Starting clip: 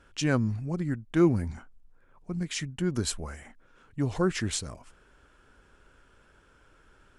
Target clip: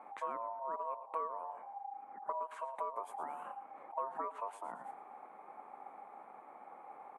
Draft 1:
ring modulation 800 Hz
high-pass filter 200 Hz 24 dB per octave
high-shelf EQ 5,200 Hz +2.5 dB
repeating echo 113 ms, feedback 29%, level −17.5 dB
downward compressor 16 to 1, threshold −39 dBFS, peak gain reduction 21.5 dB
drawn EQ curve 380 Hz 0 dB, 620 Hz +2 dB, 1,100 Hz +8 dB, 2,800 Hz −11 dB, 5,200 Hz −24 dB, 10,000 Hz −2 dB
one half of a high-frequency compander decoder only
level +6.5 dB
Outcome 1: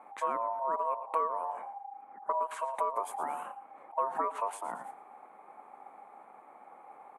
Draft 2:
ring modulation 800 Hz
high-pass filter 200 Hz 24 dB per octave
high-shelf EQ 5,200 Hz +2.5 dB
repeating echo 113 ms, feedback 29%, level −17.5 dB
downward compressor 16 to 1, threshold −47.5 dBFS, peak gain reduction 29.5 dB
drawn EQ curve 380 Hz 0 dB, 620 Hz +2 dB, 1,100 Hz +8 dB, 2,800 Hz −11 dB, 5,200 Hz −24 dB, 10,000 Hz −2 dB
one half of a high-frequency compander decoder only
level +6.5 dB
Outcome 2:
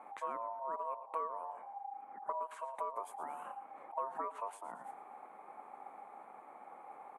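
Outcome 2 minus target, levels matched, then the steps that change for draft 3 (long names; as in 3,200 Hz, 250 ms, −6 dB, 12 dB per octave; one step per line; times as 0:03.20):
8,000 Hz band +4.5 dB
change: high-shelf EQ 5,200 Hz −5.5 dB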